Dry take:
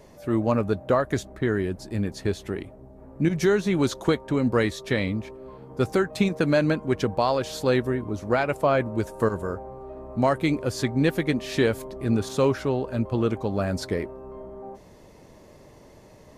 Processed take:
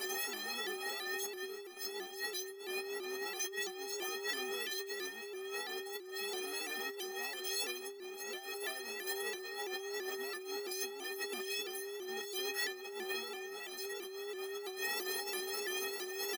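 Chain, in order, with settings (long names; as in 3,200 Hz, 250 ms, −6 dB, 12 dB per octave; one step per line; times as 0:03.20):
sign of each sample alone
stiff-string resonator 380 Hz, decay 0.66 s, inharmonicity 0.03
compressor whose output falls as the input rises −46 dBFS, ratio −1
elliptic high-pass filter 220 Hz, stop band 40 dB
low-shelf EQ 280 Hz −6 dB
comb filter 4.3 ms, depth 61%
pitch modulation by a square or saw wave saw up 3 Hz, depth 100 cents
level +7.5 dB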